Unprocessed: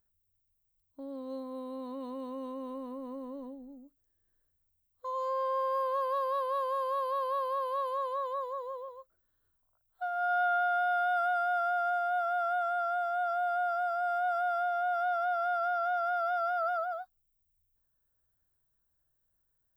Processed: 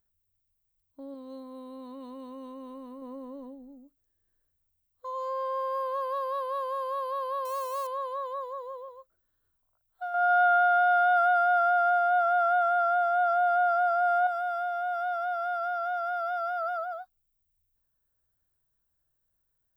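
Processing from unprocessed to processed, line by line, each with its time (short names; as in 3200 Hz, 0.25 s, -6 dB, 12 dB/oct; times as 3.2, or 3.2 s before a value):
1.14–3.02 bell 550 Hz -4.5 dB 2.1 oct
7.45–7.87 switching spikes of -35 dBFS
10.14–14.27 bell 980 Hz +7 dB 3 oct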